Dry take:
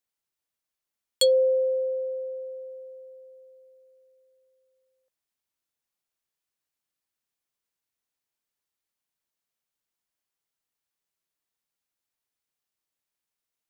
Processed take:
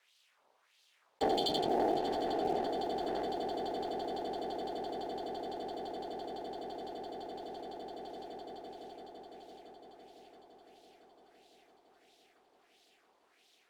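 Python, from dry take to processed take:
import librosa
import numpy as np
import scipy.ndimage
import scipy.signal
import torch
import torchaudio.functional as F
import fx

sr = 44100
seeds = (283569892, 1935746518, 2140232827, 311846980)

p1 = fx.peak_eq(x, sr, hz=670.0, db=8.5, octaves=0.77)
p2 = fx.whisperise(p1, sr, seeds[0])
p3 = fx.low_shelf(p2, sr, hz=400.0, db=-4.0)
p4 = fx.echo_wet_highpass(p3, sr, ms=83, feedback_pct=72, hz=2000.0, wet_db=-8.0)
p5 = fx.wah_lfo(p4, sr, hz=1.5, low_hz=730.0, high_hz=3700.0, q=2.5)
p6 = fx.schmitt(p5, sr, flips_db=-34.5)
p7 = p5 + (p6 * 10.0 ** (-10.0 / 20.0))
p8 = p7 * np.sin(2.0 * np.pi * 170.0 * np.arange(len(p7)) / sr)
p9 = fx.leveller(p8, sr, passes=2)
p10 = p9 + fx.echo_heads(p9, sr, ms=169, heads='second and third', feedback_pct=74, wet_db=-18.0, dry=0)
p11 = fx.env_flatten(p10, sr, amount_pct=70)
y = p11 * 10.0 ** (-5.5 / 20.0)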